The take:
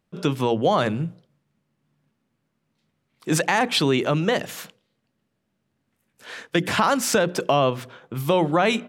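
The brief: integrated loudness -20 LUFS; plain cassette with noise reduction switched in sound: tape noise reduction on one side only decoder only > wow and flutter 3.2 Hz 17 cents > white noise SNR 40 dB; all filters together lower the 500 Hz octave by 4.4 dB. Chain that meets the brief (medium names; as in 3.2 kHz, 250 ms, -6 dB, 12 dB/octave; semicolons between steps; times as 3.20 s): peaking EQ 500 Hz -5.5 dB; tape noise reduction on one side only decoder only; wow and flutter 3.2 Hz 17 cents; white noise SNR 40 dB; trim +4 dB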